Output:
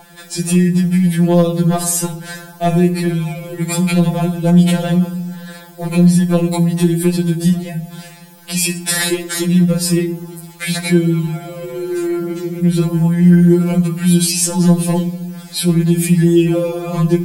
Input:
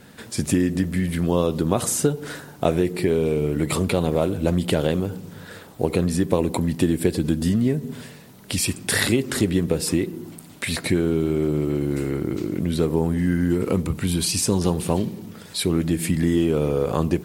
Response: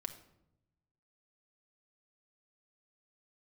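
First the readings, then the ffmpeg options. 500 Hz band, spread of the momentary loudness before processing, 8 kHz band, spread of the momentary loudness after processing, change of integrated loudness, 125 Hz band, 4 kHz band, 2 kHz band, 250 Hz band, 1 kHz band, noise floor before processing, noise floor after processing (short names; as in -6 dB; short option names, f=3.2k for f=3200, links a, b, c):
+2.5 dB, 10 LU, +7.5 dB, 14 LU, +7.5 dB, +10.0 dB, +5.5 dB, +4.5 dB, +8.5 dB, +4.5 dB, -44 dBFS, -38 dBFS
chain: -filter_complex "[0:a]asoftclip=type=hard:threshold=-10dB,aeval=exprs='val(0)+0.0282*sin(2*PI*780*n/s)':c=same,asplit=2[a][b];[1:a]atrim=start_sample=2205,highshelf=f=7.2k:g=7.5[c];[b][c]afir=irnorm=-1:irlink=0,volume=6dB[d];[a][d]amix=inputs=2:normalize=0,afftfilt=real='re*2.83*eq(mod(b,8),0)':imag='im*2.83*eq(mod(b,8),0)':win_size=2048:overlap=0.75,volume=-1dB"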